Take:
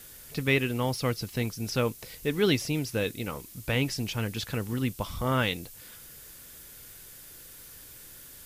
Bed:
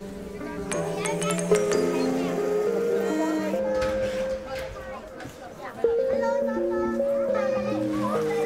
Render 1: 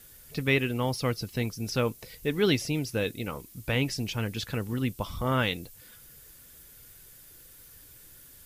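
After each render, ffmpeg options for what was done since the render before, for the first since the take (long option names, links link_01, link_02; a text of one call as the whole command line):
ffmpeg -i in.wav -af "afftdn=noise_reduction=6:noise_floor=-49" out.wav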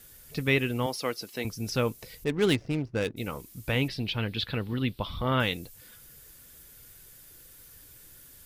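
ffmpeg -i in.wav -filter_complex "[0:a]asettb=1/sr,asplit=3[link_01][link_02][link_03];[link_01]atrim=end=0.864[link_04];[link_02]atrim=start=0.86:end=1.45,asetpts=PTS-STARTPTS,afade=type=in:duration=0.004:curve=qsin,afade=type=out:start_time=0.586:duration=0.004:curve=qsin,highpass=310[link_05];[link_03]atrim=start=1.446[link_06];[link_04][link_05]acrossfade=duration=0.004:curve1=hsin:curve2=qsin[link_07];[link_07][link_06]acrossfade=duration=0.004:curve1=qsin:curve2=hsin,asplit=3[link_08][link_09][link_10];[link_08]afade=type=out:start_time=2.23:duration=0.02[link_11];[link_09]adynamicsmooth=sensitivity=5:basefreq=650,afade=type=in:start_time=2.23:duration=0.02,afade=type=out:start_time=3.16:duration=0.02[link_12];[link_10]afade=type=in:start_time=3.16:duration=0.02[link_13];[link_11][link_12][link_13]amix=inputs=3:normalize=0,asettb=1/sr,asplit=3[link_14][link_15][link_16];[link_14]atrim=end=3.884[link_17];[link_15]atrim=start=3.88:end=5.4,asetpts=PTS-STARTPTS,afade=type=in:duration=0.004:curve=qsin,afade=type=out:start_time=1.516:duration=0.004:curve=qsin,highshelf=frequency=5100:width_type=q:width=3:gain=-9.5[link_18];[link_16]atrim=start=5.396[link_19];[link_17][link_18]acrossfade=duration=0.004:curve1=hsin:curve2=qsin[link_20];[link_20][link_19]acrossfade=duration=0.004:curve1=qsin:curve2=hsin" out.wav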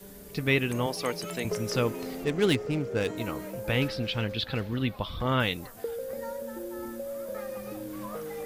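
ffmpeg -i in.wav -i bed.wav -filter_complex "[1:a]volume=-12dB[link_01];[0:a][link_01]amix=inputs=2:normalize=0" out.wav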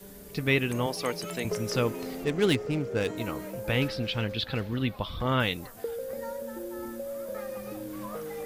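ffmpeg -i in.wav -af anull out.wav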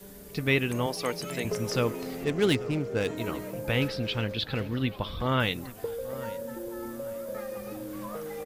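ffmpeg -i in.wav -filter_complex "[0:a]asplit=2[link_01][link_02];[link_02]adelay=836,lowpass=frequency=1800:poles=1,volume=-16dB,asplit=2[link_03][link_04];[link_04]adelay=836,lowpass=frequency=1800:poles=1,volume=0.46,asplit=2[link_05][link_06];[link_06]adelay=836,lowpass=frequency=1800:poles=1,volume=0.46,asplit=2[link_07][link_08];[link_08]adelay=836,lowpass=frequency=1800:poles=1,volume=0.46[link_09];[link_01][link_03][link_05][link_07][link_09]amix=inputs=5:normalize=0" out.wav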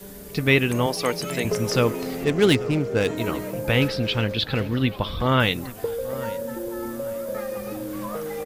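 ffmpeg -i in.wav -af "volume=6.5dB" out.wav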